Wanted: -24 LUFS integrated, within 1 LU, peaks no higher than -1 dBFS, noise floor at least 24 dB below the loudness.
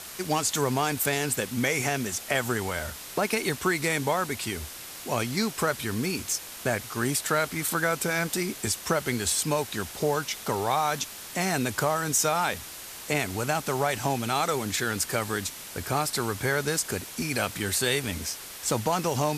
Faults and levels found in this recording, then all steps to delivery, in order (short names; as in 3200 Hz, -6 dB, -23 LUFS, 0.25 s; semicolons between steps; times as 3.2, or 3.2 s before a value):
noise floor -41 dBFS; noise floor target -52 dBFS; loudness -27.5 LUFS; peak -9.0 dBFS; loudness target -24.0 LUFS
-> noise print and reduce 11 dB; gain +3.5 dB